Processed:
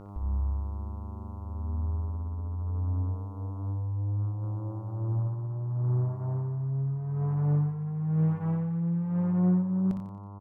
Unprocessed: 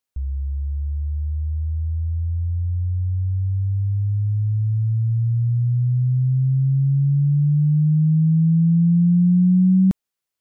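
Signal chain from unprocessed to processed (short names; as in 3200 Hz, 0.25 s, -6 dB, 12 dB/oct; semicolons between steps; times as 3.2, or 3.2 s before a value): ending faded out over 1.61 s; in parallel at -4 dB: soft clip -27.5 dBFS, distortion -8 dB; on the sum: buzz 100 Hz, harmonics 14, -37 dBFS -8 dB/oct; early reflections 22 ms -16 dB, 59 ms -5.5 dB; negative-ratio compressor -17 dBFS, ratio -1; bell 87 Hz -11 dB 1.9 oct; feedback echo 89 ms, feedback 44%, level -9 dB; Doppler distortion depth 0.25 ms; gain -3.5 dB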